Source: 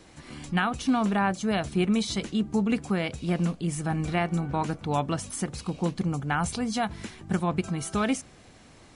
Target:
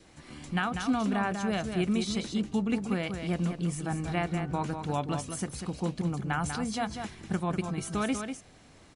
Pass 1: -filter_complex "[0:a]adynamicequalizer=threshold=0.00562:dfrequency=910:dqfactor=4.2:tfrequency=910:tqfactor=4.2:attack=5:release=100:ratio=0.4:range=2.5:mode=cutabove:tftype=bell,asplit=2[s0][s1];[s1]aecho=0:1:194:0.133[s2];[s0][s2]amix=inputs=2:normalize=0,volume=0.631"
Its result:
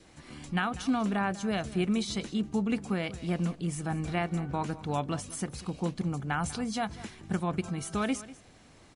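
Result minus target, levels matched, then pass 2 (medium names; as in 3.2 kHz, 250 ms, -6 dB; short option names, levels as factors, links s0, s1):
echo-to-direct -10.5 dB
-filter_complex "[0:a]adynamicequalizer=threshold=0.00562:dfrequency=910:dqfactor=4.2:tfrequency=910:tqfactor=4.2:attack=5:release=100:ratio=0.4:range=2.5:mode=cutabove:tftype=bell,asplit=2[s0][s1];[s1]aecho=0:1:194:0.447[s2];[s0][s2]amix=inputs=2:normalize=0,volume=0.631"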